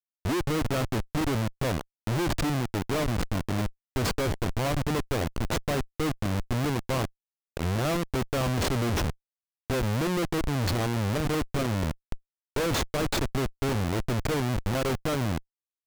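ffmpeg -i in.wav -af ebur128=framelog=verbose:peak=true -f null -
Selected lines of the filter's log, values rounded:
Integrated loudness:
  I:         -28.9 LUFS
  Threshold: -39.1 LUFS
Loudness range:
  LRA:         1.2 LU
  Threshold: -49.2 LUFS
  LRA low:   -29.8 LUFS
  LRA high:  -28.5 LUFS
True peak:
  Peak:      -18.8 dBFS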